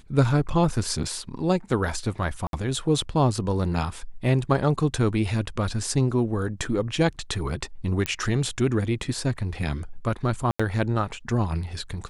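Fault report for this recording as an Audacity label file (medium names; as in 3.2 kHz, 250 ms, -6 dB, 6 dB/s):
2.470000	2.530000	dropout 62 ms
8.060000	8.060000	pop -9 dBFS
10.510000	10.600000	dropout 85 ms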